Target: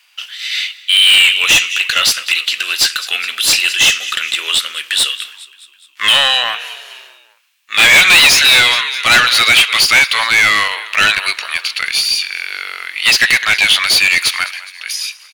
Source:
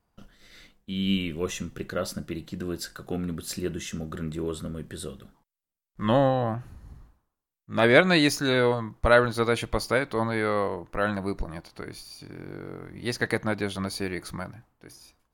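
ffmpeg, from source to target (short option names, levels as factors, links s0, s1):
-filter_complex "[0:a]highpass=f=2700:t=q:w=3.3,asplit=5[s0][s1][s2][s3][s4];[s1]adelay=207,afreqshift=-40,volume=0.0891[s5];[s2]adelay=414,afreqshift=-80,volume=0.0501[s6];[s3]adelay=621,afreqshift=-120,volume=0.0279[s7];[s4]adelay=828,afreqshift=-160,volume=0.0157[s8];[s0][s5][s6][s7][s8]amix=inputs=5:normalize=0,asplit=2[s9][s10];[s10]highpass=f=720:p=1,volume=56.2,asoftclip=type=tanh:threshold=0.891[s11];[s9][s11]amix=inputs=2:normalize=0,lowpass=f=6000:p=1,volume=0.501,volume=1.26"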